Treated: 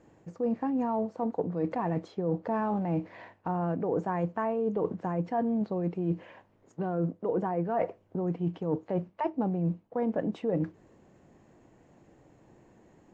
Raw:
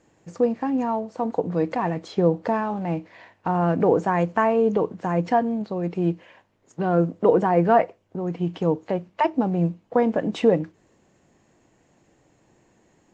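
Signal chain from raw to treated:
high-shelf EQ 2,000 Hz −11.5 dB
reversed playback
downward compressor 12 to 1, threshold −29 dBFS, peak gain reduction 17 dB
reversed playback
level +3 dB

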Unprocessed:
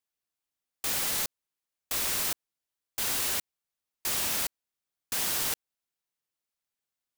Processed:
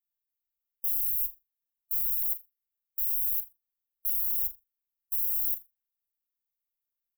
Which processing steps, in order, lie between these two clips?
inverse Chebyshev band-stop filter 220–5,100 Hz, stop band 60 dB
harmonic and percussive parts rebalanced percussive +4 dB
comb filter 5.7 ms, depth 82%
flutter between parallel walls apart 7 metres, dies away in 0.21 s

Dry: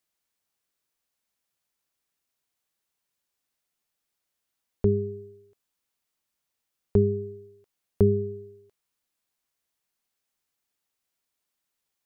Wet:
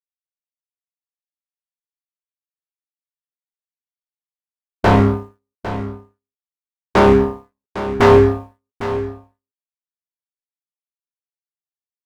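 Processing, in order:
low-shelf EQ 89 Hz −9 dB
leveller curve on the samples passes 2
pitch-shifted copies added −12 semitones −13 dB, −7 semitones −8 dB
in parallel at −4 dB: sine wavefolder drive 11 dB, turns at −7.5 dBFS
on the sum: power curve on the samples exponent 2
chorus effect 0.28 Hz, delay 15.5 ms, depth 3.6 ms
on a send: single-tap delay 804 ms −12.5 dB
on the sum: level +5.5 dB

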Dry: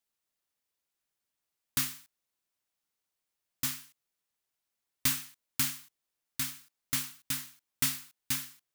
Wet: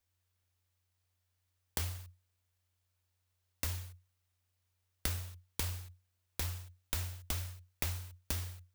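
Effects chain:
parametric band 12,000 Hz −10 dB 0.88 octaves
downward compressor 6 to 1, threshold −40 dBFS, peak gain reduction 14 dB
flanger 1.4 Hz, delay 0.9 ms, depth 2.9 ms, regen +47%
full-wave rectification
frequency shifter −90 Hz
level +12.5 dB

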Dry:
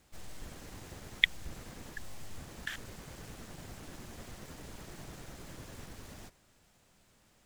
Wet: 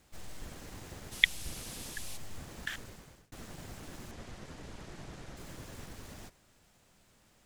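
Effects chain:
0:01.11–0:02.16: noise in a band 2,400–12,000 Hz −48 dBFS
0:02.73–0:03.32: fade out
0:04.11–0:05.37: high-frequency loss of the air 53 metres
level +1 dB

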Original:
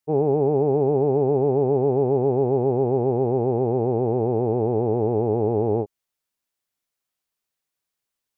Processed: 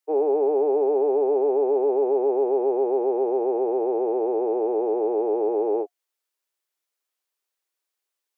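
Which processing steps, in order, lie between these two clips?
Butterworth high-pass 320 Hz 48 dB per octave
notch filter 710 Hz, Q 23

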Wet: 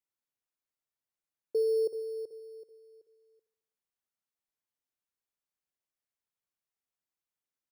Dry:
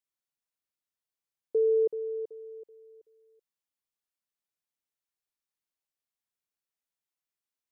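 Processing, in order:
in parallel at −10 dB: decimation without filtering 9×
on the sum: repeating echo 73 ms, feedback 57%, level −16 dB
level −5 dB

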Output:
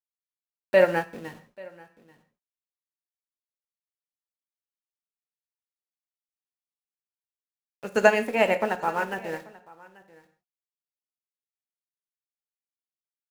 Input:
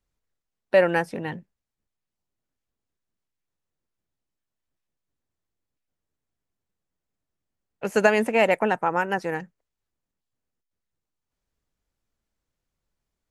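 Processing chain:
centre clipping without the shift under −35.5 dBFS
on a send: single-tap delay 837 ms −16 dB
on the sum: reverb whose tail is shaped and stops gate 190 ms falling, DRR 5.5 dB
expander for the loud parts 1.5 to 1, over −34 dBFS

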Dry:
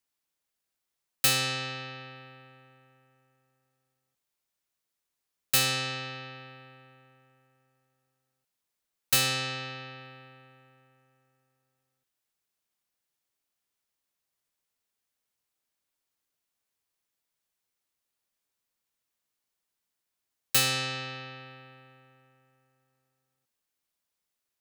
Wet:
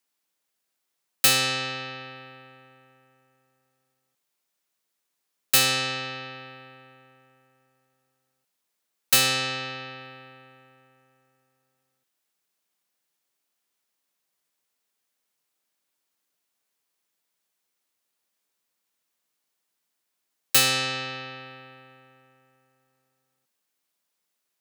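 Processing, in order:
high-pass filter 160 Hz 12 dB per octave
level +5 dB

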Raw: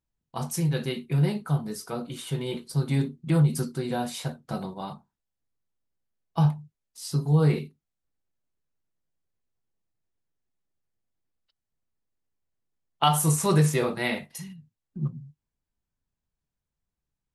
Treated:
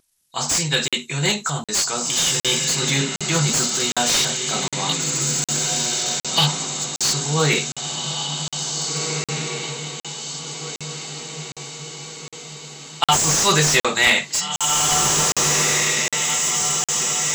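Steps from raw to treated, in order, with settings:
hearing-aid frequency compression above 3,600 Hz 1.5 to 1
0:04.89–0:06.47: flat-topped bell 3,500 Hz +14 dB 1 octave
transient designer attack −4 dB, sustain +3 dB
first-order pre-emphasis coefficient 0.97
pitch vibrato 0.48 Hz 5.6 cents
feedback delay with all-pass diffusion 1,874 ms, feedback 52%, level −5 dB
boost into a limiter +26 dB
regular buffer underruns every 0.76 s, samples 2,048, zero, from 0:00.88
slew-rate limiting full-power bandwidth 660 Hz
level +1.5 dB

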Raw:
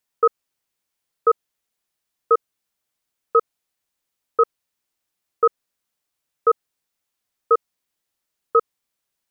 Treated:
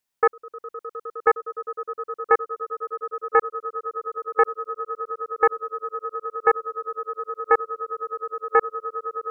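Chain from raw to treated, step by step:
on a send: echo that builds up and dies away 103 ms, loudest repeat 8, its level −17.5 dB
on the sum: highs frequency-modulated by the lows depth 0.11 ms
level −1.5 dB

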